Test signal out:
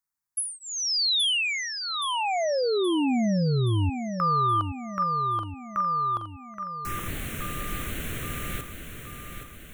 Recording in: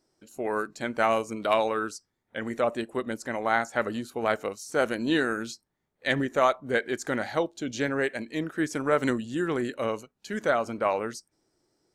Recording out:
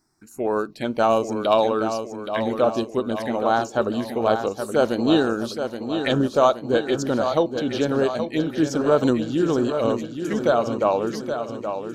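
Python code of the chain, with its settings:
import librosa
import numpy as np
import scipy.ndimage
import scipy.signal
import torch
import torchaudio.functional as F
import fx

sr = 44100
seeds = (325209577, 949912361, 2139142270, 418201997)

p1 = fx.env_phaser(x, sr, low_hz=520.0, high_hz=2000.0, full_db=-27.0)
p2 = p1 + fx.echo_feedback(p1, sr, ms=823, feedback_pct=56, wet_db=-8, dry=0)
y = F.gain(torch.from_numpy(p2), 7.5).numpy()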